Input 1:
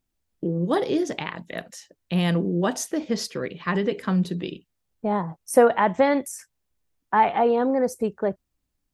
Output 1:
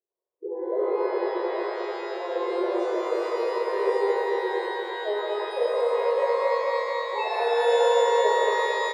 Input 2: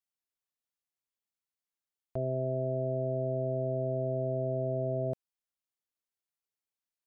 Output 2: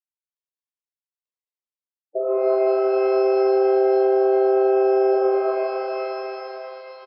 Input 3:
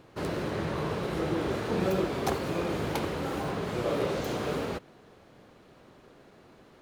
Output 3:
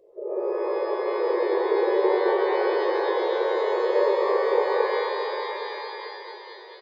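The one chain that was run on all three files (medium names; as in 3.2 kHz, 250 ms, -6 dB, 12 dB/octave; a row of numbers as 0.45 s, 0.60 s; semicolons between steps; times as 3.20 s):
median filter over 41 samples; brick-wall FIR high-pass 340 Hz; dynamic bell 2.4 kHz, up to +4 dB, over -45 dBFS, Q 0.93; spectral gate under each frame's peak -10 dB strong; peaking EQ 1.5 kHz -14.5 dB 0.21 oct; comb 1.9 ms, depth 52%; feedback delay 221 ms, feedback 51%, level -4.5 dB; compression, threshold -26 dBFS; pitch-shifted reverb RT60 3.6 s, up +12 st, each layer -8 dB, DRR -8.5 dB; peak normalisation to -9 dBFS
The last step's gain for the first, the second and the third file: -3.5 dB, +12.0 dB, +1.0 dB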